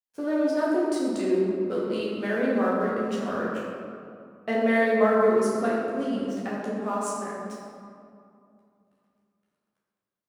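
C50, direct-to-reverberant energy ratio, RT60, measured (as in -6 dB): -1.5 dB, -7.0 dB, 2.5 s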